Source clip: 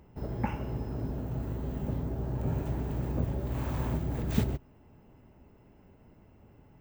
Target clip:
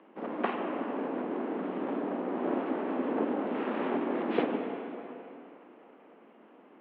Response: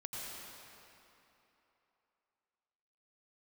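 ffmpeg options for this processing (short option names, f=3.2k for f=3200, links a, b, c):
-filter_complex "[0:a]aeval=exprs='abs(val(0))':c=same,asplit=2[a][b];[1:a]atrim=start_sample=2205,lowpass=2.9k,adelay=50[c];[b][c]afir=irnorm=-1:irlink=0,volume=-3dB[d];[a][d]amix=inputs=2:normalize=0,highpass=f=160:t=q:w=0.5412,highpass=f=160:t=q:w=1.307,lowpass=f=3.1k:t=q:w=0.5176,lowpass=f=3.1k:t=q:w=0.7071,lowpass=f=3.1k:t=q:w=1.932,afreqshift=66,volume=5dB"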